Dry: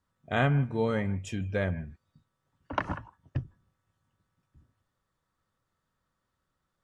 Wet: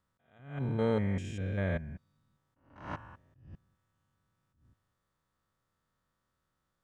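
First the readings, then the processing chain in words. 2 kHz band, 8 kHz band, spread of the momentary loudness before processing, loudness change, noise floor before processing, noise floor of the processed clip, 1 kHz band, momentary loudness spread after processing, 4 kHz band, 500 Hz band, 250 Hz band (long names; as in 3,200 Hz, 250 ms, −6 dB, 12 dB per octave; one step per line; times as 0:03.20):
−9.0 dB, can't be measured, 12 LU, −3.5 dB, −82 dBFS, −82 dBFS, −9.5 dB, 17 LU, −8.5 dB, −3.5 dB, −3.0 dB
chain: spectrum averaged block by block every 200 ms
level that may rise only so fast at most 110 dB per second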